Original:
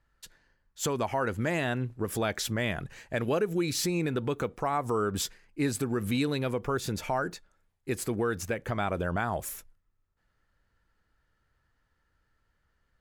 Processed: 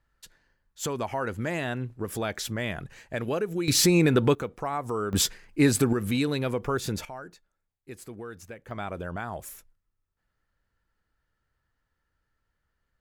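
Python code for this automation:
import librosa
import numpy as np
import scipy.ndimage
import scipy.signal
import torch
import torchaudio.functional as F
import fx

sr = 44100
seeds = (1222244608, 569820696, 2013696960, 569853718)

y = fx.gain(x, sr, db=fx.steps((0.0, -1.0), (3.68, 9.0), (4.35, -1.5), (5.13, 8.0), (5.93, 2.0), (7.05, -11.0), (8.71, -4.5)))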